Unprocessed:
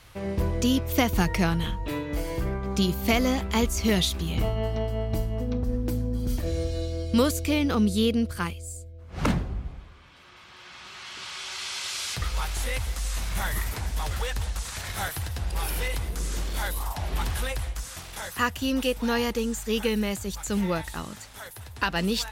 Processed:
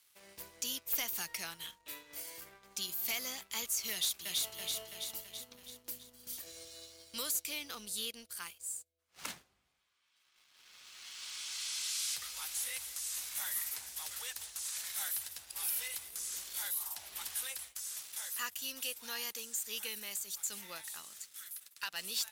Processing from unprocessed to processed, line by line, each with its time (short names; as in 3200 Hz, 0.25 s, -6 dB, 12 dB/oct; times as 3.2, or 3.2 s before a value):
3.92–4.52 echo throw 0.33 s, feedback 60%, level -1.5 dB
21.16–21.83 elliptic high-pass 1200 Hz
whole clip: differentiator; sample leveller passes 2; gain -8.5 dB